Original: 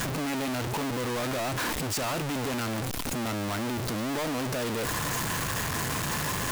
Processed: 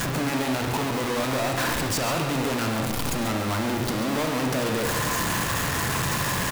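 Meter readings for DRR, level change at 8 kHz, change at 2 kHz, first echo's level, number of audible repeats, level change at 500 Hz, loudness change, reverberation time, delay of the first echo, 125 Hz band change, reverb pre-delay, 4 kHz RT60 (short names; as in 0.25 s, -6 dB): 2.0 dB, +3.5 dB, +5.0 dB, -9.5 dB, 1, +5.0 dB, +4.5 dB, 1.2 s, 0.137 s, +4.5 dB, 30 ms, 1.1 s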